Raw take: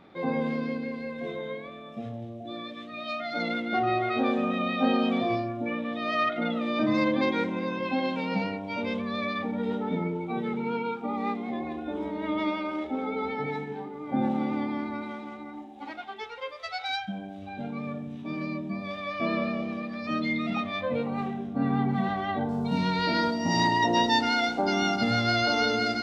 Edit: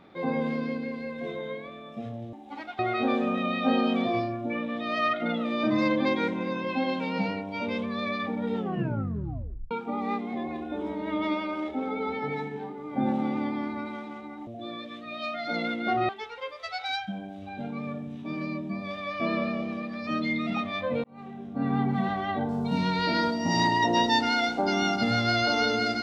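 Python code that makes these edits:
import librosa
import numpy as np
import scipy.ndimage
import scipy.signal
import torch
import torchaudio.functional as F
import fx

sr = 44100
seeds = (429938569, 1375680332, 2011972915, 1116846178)

y = fx.edit(x, sr, fx.swap(start_s=2.33, length_s=1.62, other_s=15.63, other_length_s=0.46),
    fx.tape_stop(start_s=9.7, length_s=1.17),
    fx.fade_in_span(start_s=21.04, length_s=0.72), tone=tone)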